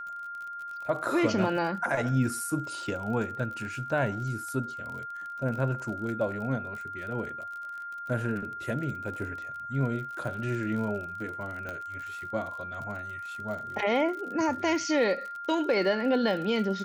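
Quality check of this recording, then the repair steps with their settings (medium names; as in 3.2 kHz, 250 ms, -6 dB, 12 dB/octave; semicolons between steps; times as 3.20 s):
crackle 41 per s -37 dBFS
whine 1.4 kHz -36 dBFS
11.69 s: pop -23 dBFS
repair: de-click; band-stop 1.4 kHz, Q 30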